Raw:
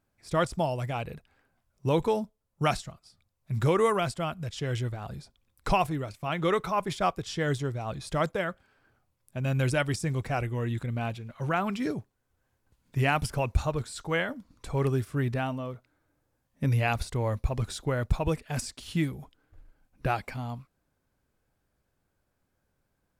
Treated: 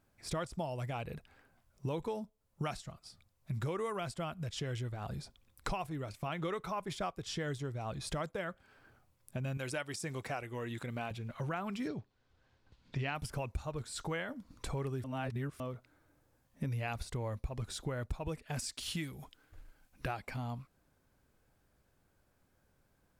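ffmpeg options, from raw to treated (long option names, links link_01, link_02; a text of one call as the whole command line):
ffmpeg -i in.wav -filter_complex "[0:a]asettb=1/sr,asplit=3[link_01][link_02][link_03];[link_01]atrim=end=9.574[link_04];[link_02]atrim=start=9.57:end=11.11,asetpts=PTS-STARTPTS,afade=type=in:duration=0.004:curve=qsin,afade=type=out:start_time=1.536:duration=0.004:curve=qsin,highpass=frequency=400:poles=1[link_05];[link_03]atrim=start=11.106[link_06];[link_04][link_05]acrossfade=duration=0.004:curve1=hsin:curve2=qsin[link_07];[link_07][link_06]acrossfade=duration=0.004:curve1=qsin:curve2=hsin,asettb=1/sr,asplit=3[link_08][link_09][link_10];[link_08]atrim=end=11.884[link_11];[link_09]atrim=start=11.88:end=13.15,asetpts=PTS-STARTPTS,afade=type=in:duration=0.004:curve=qsin,afade=type=out:start_time=1.266:duration=0.004:curve=qsin,lowpass=frequency=4200:width_type=q:width=1.8[link_12];[link_10]atrim=start=13.146[link_13];[link_11][link_12]acrossfade=duration=0.004:curve1=hsin:curve2=qsin[link_14];[link_14][link_13]acrossfade=duration=0.004:curve1=qsin:curve2=hsin,asettb=1/sr,asplit=3[link_15][link_16][link_17];[link_15]atrim=end=18.604[link_18];[link_16]atrim=start=18.6:end=20.08,asetpts=PTS-STARTPTS,afade=type=in:duration=0.004:curve=qsin,afade=type=out:start_time=1.476:duration=0.004:curve=qsin,tiltshelf=frequency=1300:gain=-4.5[link_19];[link_17]atrim=start=20.076[link_20];[link_18][link_19]acrossfade=duration=0.004:curve1=hsin:curve2=qsin[link_21];[link_21][link_20]acrossfade=duration=0.004:curve1=qsin:curve2=hsin,asplit=3[link_22][link_23][link_24];[link_22]atrim=end=15.042[link_25];[link_23]atrim=start=15.038:end=15.602,asetpts=PTS-STARTPTS,areverse[link_26];[link_24]atrim=start=15.598[link_27];[link_25][link_26]acrossfade=duration=0.004:curve1=hsin:curve2=hsin[link_28];[link_28][link_27]acrossfade=duration=0.004:curve1=hsin:curve2=hsin,acompressor=threshold=-41dB:ratio=4,volume=3.5dB" out.wav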